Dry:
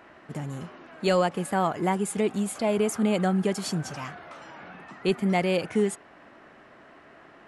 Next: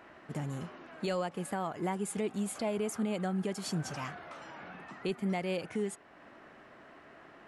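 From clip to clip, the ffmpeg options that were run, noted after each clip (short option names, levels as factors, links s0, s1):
-af "alimiter=limit=0.0794:level=0:latency=1:release=448,volume=0.708"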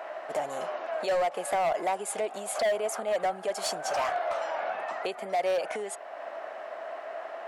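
-af "acompressor=threshold=0.0178:ratio=12,highpass=f=640:t=q:w=4.9,asoftclip=type=hard:threshold=0.0251,volume=2.82"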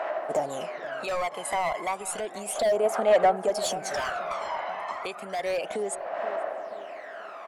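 -filter_complex "[0:a]aphaser=in_gain=1:out_gain=1:delay=1:decay=0.64:speed=0.32:type=sinusoidal,asplit=2[s0][s1];[s1]adelay=480,lowpass=f=940:p=1,volume=0.224,asplit=2[s2][s3];[s3]adelay=480,lowpass=f=940:p=1,volume=0.48,asplit=2[s4][s5];[s5]adelay=480,lowpass=f=940:p=1,volume=0.48,asplit=2[s6][s7];[s7]adelay=480,lowpass=f=940:p=1,volume=0.48,asplit=2[s8][s9];[s9]adelay=480,lowpass=f=940:p=1,volume=0.48[s10];[s0][s2][s4][s6][s8][s10]amix=inputs=6:normalize=0"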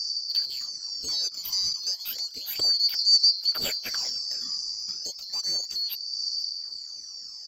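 -af "afftfilt=real='real(if(lt(b,736),b+184*(1-2*mod(floor(b/184),2)),b),0)':imag='imag(if(lt(b,736),b+184*(1-2*mod(floor(b/184),2)),b),0)':win_size=2048:overlap=0.75"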